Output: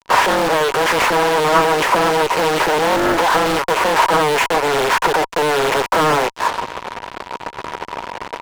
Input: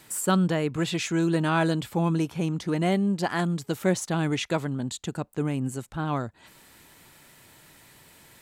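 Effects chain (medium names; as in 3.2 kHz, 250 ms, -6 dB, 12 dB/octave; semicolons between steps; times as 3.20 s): rattle on loud lows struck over -32 dBFS, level -27 dBFS; careless resampling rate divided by 8×, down none, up hold; hard clipper -22.5 dBFS, distortion -12 dB; formant shift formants -3 st; LPC vocoder at 8 kHz pitch kept; gain riding 2 s; level-controlled noise filter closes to 580 Hz, open at -22 dBFS; mistuned SSB +150 Hz 250–3100 Hz; compression 4:1, threshold -41 dBFS, peak gain reduction 13 dB; fuzz box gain 62 dB, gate -57 dBFS; peaking EQ 960 Hz +14.5 dB 0.21 oct; loudspeaker Doppler distortion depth 0.72 ms; trim -2.5 dB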